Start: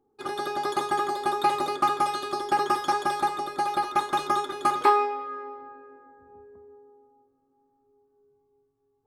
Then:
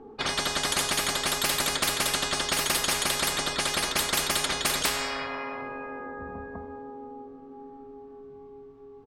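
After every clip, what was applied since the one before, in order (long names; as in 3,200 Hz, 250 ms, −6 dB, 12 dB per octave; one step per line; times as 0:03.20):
comb filter 4.4 ms, depth 44%
low-pass that shuts in the quiet parts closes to 2,600 Hz, open at −21.5 dBFS
every bin compressed towards the loudest bin 10 to 1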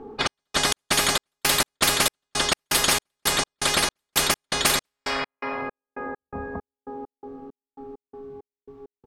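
gate pattern "xxx...xx.." 166 BPM −60 dB
level +6 dB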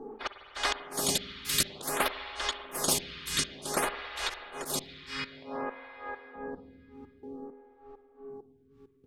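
volume swells 139 ms
spring reverb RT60 3.4 s, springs 49/54 ms, chirp 25 ms, DRR 9 dB
phaser with staggered stages 0.54 Hz
level −2 dB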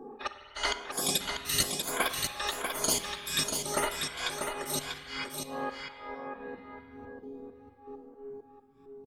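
rippled gain that drifts along the octave scale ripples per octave 1.8, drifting +0.91 Hz, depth 12 dB
single-tap delay 642 ms −5.5 dB
coupled-rooms reverb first 0.77 s, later 2.2 s, from −24 dB, DRR 13 dB
level −2.5 dB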